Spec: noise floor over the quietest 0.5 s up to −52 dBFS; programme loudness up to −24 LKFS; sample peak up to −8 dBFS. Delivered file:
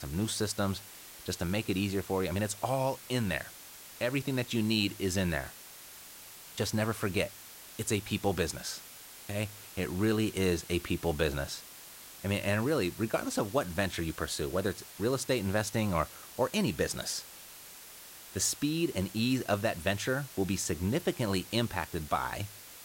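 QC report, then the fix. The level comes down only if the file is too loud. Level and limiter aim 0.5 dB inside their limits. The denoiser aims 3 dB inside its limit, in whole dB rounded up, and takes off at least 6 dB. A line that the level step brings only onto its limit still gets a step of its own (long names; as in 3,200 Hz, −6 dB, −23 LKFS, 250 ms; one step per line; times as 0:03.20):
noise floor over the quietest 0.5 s −50 dBFS: out of spec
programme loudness −32.5 LKFS: in spec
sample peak −14.0 dBFS: in spec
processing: broadband denoise 6 dB, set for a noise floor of −50 dBFS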